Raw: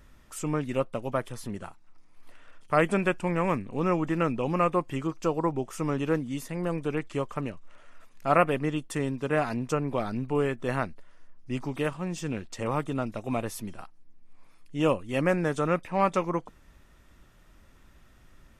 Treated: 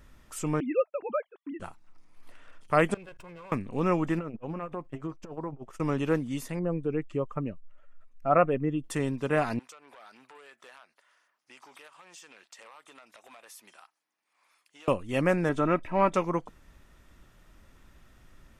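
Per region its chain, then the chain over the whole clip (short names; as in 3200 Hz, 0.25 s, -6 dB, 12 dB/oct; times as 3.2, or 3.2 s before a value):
0.6–1.6 sine-wave speech + gate -47 dBFS, range -33 dB
2.94–3.52 minimum comb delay 1.9 ms + high shelf 4100 Hz -5 dB + level quantiser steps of 23 dB
4.19–5.8 compressor 12:1, threshold -28 dBFS + high shelf 2900 Hz -12 dB + core saturation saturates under 220 Hz
6.59–8.84 spectral contrast raised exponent 1.5 + bell 1000 Hz -2.5 dB 0.25 oct
9.59–14.88 HPF 960 Hz + compressor 5:1, threshold -46 dBFS + core saturation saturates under 2500 Hz
15.49–16.14 tone controls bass +4 dB, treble -11 dB + comb 3.1 ms, depth 43%
whole clip: dry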